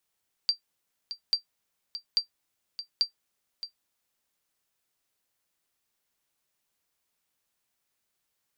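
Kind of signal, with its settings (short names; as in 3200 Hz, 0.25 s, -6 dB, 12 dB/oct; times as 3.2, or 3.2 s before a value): sonar ping 4700 Hz, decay 0.11 s, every 0.84 s, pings 4, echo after 0.62 s, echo -12.5 dB -14.5 dBFS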